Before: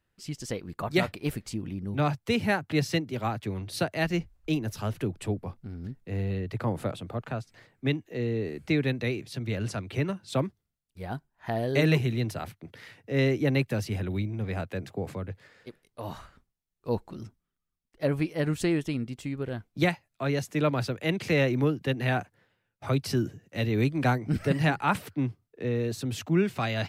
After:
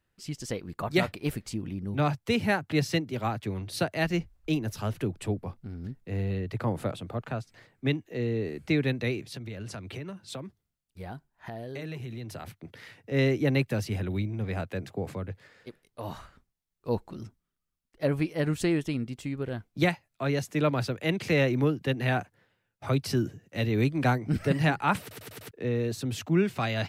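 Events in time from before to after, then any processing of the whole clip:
9.22–13.12 s: compression, threshold -35 dBFS
25.01 s: stutter in place 0.10 s, 5 plays

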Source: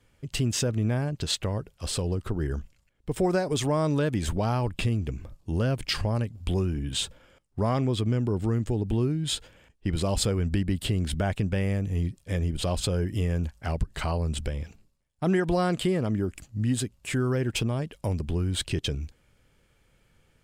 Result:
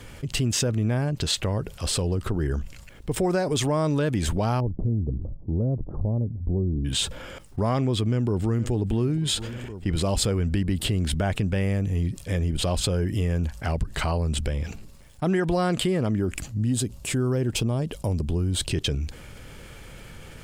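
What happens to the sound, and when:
4.60–6.85 s: Gaussian low-pass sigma 14 samples
8.03–8.71 s: echo throw 470 ms, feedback 65%, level -18 dB
16.57–18.72 s: peaking EQ 1.9 kHz -8 dB 1.4 oct
whole clip: level flattener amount 50%

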